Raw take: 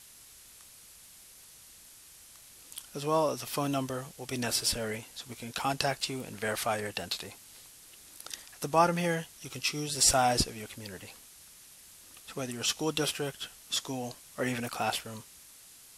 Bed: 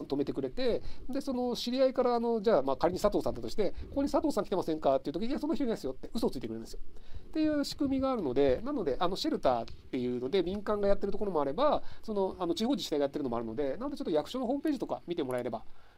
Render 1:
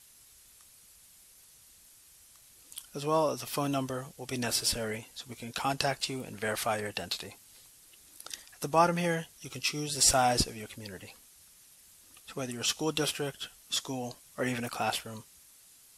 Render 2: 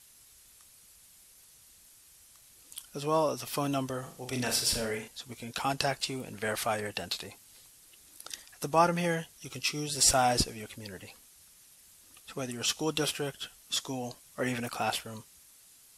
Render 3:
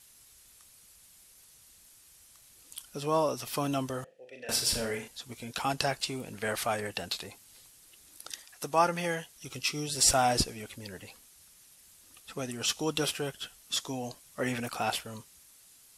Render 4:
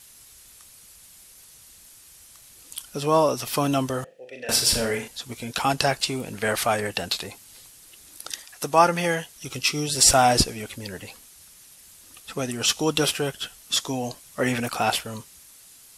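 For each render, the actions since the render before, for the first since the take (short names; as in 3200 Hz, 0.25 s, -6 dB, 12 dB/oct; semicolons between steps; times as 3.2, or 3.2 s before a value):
denoiser 6 dB, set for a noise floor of -54 dBFS
3.99–5.08 flutter echo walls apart 6.8 m, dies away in 0.38 s
4.04–4.49 vowel filter e; 8.32–9.36 low shelf 280 Hz -7.5 dB
gain +8 dB; limiter -3 dBFS, peak gain reduction 1.5 dB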